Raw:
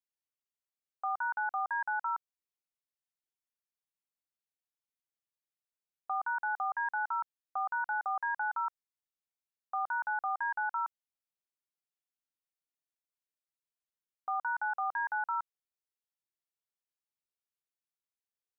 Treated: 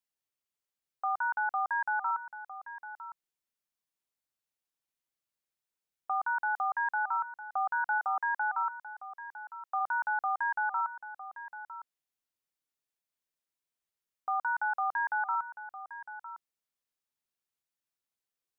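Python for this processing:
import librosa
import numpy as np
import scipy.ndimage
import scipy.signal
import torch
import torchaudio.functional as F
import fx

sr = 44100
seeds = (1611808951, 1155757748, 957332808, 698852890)

y = fx.highpass(x, sr, hz=440.0, slope=24, at=(7.98, 9.79), fade=0.02)
y = y + 10.0 ** (-13.0 / 20.0) * np.pad(y, (int(956 * sr / 1000.0), 0))[:len(y)]
y = y * librosa.db_to_amplitude(2.5)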